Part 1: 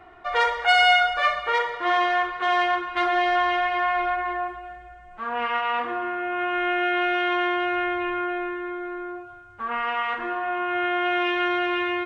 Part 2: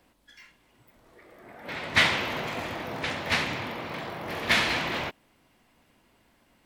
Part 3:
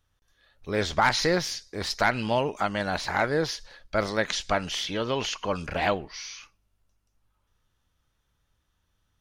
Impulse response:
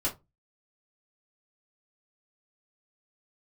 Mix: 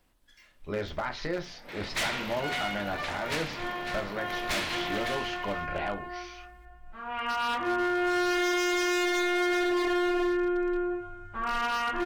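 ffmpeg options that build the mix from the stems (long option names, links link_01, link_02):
-filter_complex "[0:a]bass=frequency=250:gain=9,treble=frequency=4000:gain=1,bandreject=frequency=60:width_type=h:width=6,bandreject=frequency=120:width_type=h:width=6,bandreject=frequency=180:width_type=h:width=6,bandreject=frequency=240:width_type=h:width=6,bandreject=frequency=300:width_type=h:width=6,bandreject=frequency=360:width_type=h:width=6,dynaudnorm=framelen=200:gausssize=11:maxgain=7dB,adelay=1750,volume=-12dB,afade=type=in:start_time=6.86:duration=0.69:silence=0.281838,asplit=3[link_01][link_02][link_03];[link_02]volume=-7dB[link_04];[link_03]volume=-16dB[link_05];[1:a]highshelf=frequency=4000:gain=6,volume=-8.5dB,asplit=2[link_06][link_07];[link_07]volume=-8.5dB[link_08];[2:a]lowpass=3200,alimiter=limit=-19.5dB:level=0:latency=1:release=296,volume=-5.5dB,asplit=2[link_09][link_10];[link_10]volume=-9dB[link_11];[3:a]atrim=start_sample=2205[link_12];[link_04][link_11]amix=inputs=2:normalize=0[link_13];[link_13][link_12]afir=irnorm=-1:irlink=0[link_14];[link_05][link_08]amix=inputs=2:normalize=0,aecho=0:1:552:1[link_15];[link_01][link_06][link_09][link_14][link_15]amix=inputs=5:normalize=0,aeval=exprs='0.0708*(abs(mod(val(0)/0.0708+3,4)-2)-1)':channel_layout=same"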